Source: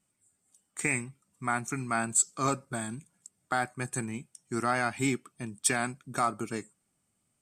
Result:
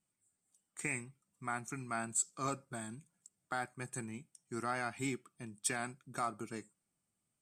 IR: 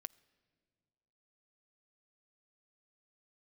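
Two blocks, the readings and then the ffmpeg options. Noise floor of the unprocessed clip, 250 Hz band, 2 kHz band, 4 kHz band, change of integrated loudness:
-77 dBFS, -9.5 dB, -9.0 dB, -9.0 dB, -9.0 dB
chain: -filter_complex "[1:a]atrim=start_sample=2205,afade=t=out:st=0.13:d=0.01,atrim=end_sample=6174[a];[0:a][a]afir=irnorm=-1:irlink=0,volume=-4dB"

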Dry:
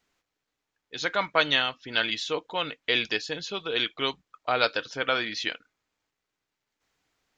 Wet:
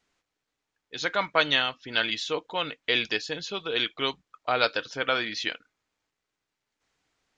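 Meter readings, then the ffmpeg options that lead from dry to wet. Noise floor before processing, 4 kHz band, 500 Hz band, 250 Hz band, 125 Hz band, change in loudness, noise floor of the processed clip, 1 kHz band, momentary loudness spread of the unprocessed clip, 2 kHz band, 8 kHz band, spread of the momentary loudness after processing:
-85 dBFS, 0.0 dB, 0.0 dB, 0.0 dB, 0.0 dB, 0.0 dB, -85 dBFS, 0.0 dB, 8 LU, 0.0 dB, n/a, 8 LU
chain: -af "aresample=22050,aresample=44100"

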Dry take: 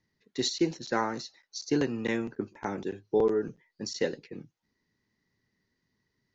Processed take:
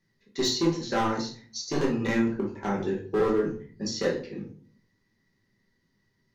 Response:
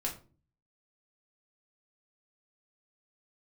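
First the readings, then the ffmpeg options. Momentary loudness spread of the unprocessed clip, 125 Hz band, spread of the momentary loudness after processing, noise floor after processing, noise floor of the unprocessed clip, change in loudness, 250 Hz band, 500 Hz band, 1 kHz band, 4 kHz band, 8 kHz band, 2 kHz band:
13 LU, +6.0 dB, 11 LU, -73 dBFS, -81 dBFS, +3.0 dB, +4.0 dB, +2.0 dB, +4.0 dB, +3.5 dB, n/a, +3.0 dB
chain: -filter_complex "[0:a]volume=23dB,asoftclip=hard,volume=-23dB[a];[1:a]atrim=start_sample=2205,asetrate=32634,aresample=44100[b];[a][b]afir=irnorm=-1:irlink=0"

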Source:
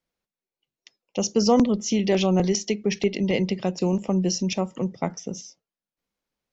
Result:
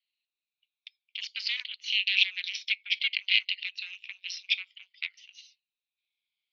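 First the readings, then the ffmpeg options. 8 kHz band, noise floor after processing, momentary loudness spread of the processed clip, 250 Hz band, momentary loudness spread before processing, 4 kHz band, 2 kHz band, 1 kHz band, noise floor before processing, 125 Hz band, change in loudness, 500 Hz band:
n/a, under -85 dBFS, 15 LU, under -40 dB, 11 LU, +5.5 dB, +8.0 dB, under -35 dB, under -85 dBFS, under -40 dB, -5.0 dB, under -40 dB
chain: -af "afftfilt=real='re*pow(10,9/40*sin(2*PI*(1.7*log(max(b,1)*sr/1024/100)/log(2)-(-0.57)*(pts-256)/sr)))':imag='im*pow(10,9/40*sin(2*PI*(1.7*log(max(b,1)*sr/1024/100)/log(2)-(-0.57)*(pts-256)/sr)))':win_size=1024:overlap=0.75,aeval=exprs='0.398*(cos(1*acos(clip(val(0)/0.398,-1,1)))-cos(1*PI/2))+0.0447*(cos(3*acos(clip(val(0)/0.398,-1,1)))-cos(3*PI/2))+0.0631*(cos(6*acos(clip(val(0)/0.398,-1,1)))-cos(6*PI/2))':c=same,asuperpass=centerf=3100:order=8:qfactor=1.5,volume=9dB"

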